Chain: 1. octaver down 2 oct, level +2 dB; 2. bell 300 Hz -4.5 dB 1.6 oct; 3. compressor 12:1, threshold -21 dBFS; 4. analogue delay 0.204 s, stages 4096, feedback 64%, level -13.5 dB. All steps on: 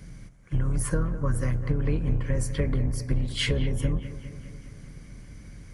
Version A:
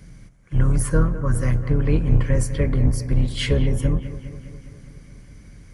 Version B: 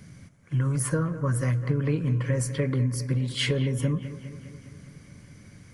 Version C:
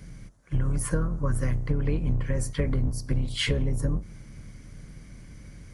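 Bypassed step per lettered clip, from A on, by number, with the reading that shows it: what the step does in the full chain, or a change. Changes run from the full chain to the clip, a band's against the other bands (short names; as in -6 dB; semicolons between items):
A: 3, mean gain reduction 3.5 dB; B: 1, momentary loudness spread change -4 LU; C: 4, echo-to-direct -11.5 dB to none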